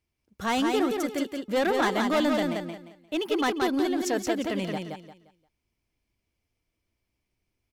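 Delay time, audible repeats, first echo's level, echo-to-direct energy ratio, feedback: 175 ms, 3, -4.0 dB, -3.5 dB, 28%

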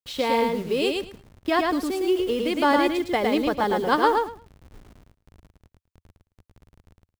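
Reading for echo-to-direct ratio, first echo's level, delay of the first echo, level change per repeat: -3.0 dB, -3.0 dB, 109 ms, -15.5 dB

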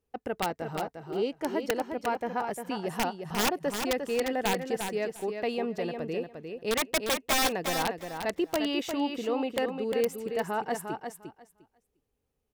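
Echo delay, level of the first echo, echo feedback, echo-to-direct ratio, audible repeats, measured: 352 ms, -6.5 dB, 16%, -6.5 dB, 2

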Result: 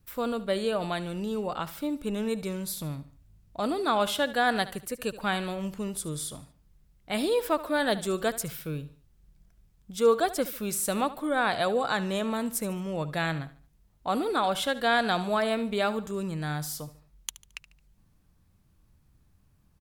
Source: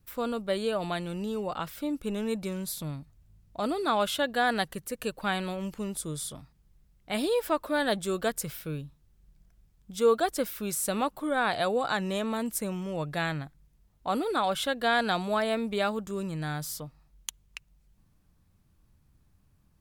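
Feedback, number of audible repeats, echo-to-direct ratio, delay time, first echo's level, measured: 39%, 3, -15.5 dB, 73 ms, -16.0 dB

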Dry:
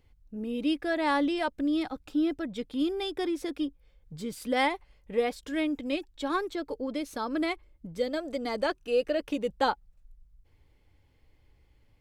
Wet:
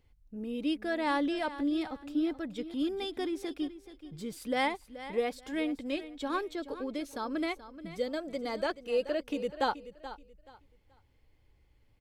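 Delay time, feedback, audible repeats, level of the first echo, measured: 429 ms, 25%, 2, -14.0 dB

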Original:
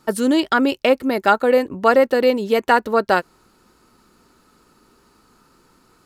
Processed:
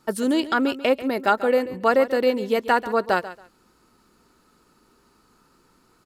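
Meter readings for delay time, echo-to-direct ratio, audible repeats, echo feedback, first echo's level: 139 ms, -15.0 dB, 2, 21%, -15.0 dB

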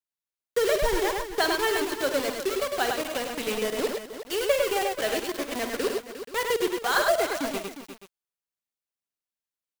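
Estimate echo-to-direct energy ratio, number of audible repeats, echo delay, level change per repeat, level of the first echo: -2.0 dB, 5, 52 ms, no regular repeats, -11.5 dB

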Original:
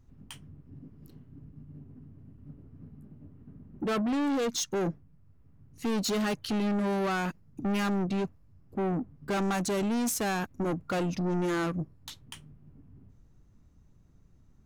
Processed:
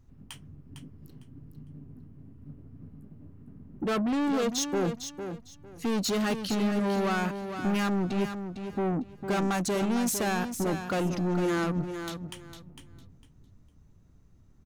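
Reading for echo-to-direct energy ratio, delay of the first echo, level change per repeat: -8.5 dB, 454 ms, -13.0 dB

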